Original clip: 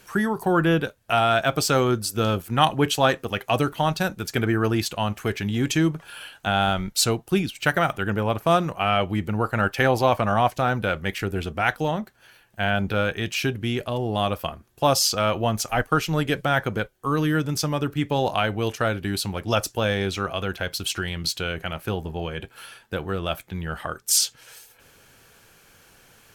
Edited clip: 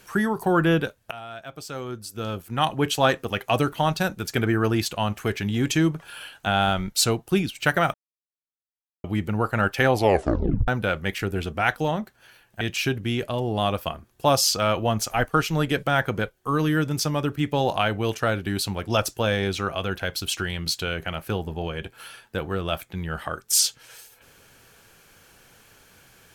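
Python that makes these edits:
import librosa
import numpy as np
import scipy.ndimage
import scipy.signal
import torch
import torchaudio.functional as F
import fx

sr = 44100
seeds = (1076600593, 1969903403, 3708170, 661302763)

y = fx.edit(x, sr, fx.fade_in_from(start_s=1.11, length_s=1.99, curve='qua', floor_db=-19.0),
    fx.silence(start_s=7.94, length_s=1.1),
    fx.tape_stop(start_s=9.94, length_s=0.74),
    fx.cut(start_s=12.61, length_s=0.58), tone=tone)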